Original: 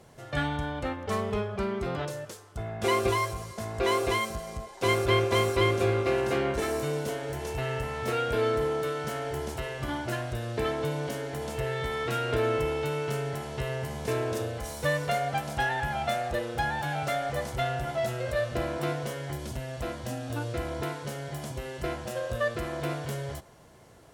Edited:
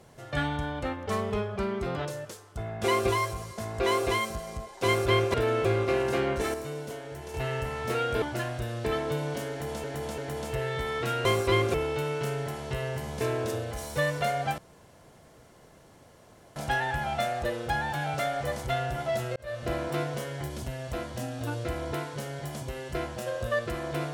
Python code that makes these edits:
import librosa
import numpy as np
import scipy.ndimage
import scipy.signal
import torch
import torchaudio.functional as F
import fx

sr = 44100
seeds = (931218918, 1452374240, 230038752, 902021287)

y = fx.edit(x, sr, fx.swap(start_s=5.34, length_s=0.49, other_s=12.3, other_length_s=0.31),
    fx.clip_gain(start_s=6.72, length_s=0.8, db=-6.0),
    fx.cut(start_s=8.4, length_s=1.55),
    fx.repeat(start_s=11.23, length_s=0.34, count=3),
    fx.insert_room_tone(at_s=15.45, length_s=1.98),
    fx.fade_in_span(start_s=18.25, length_s=0.36), tone=tone)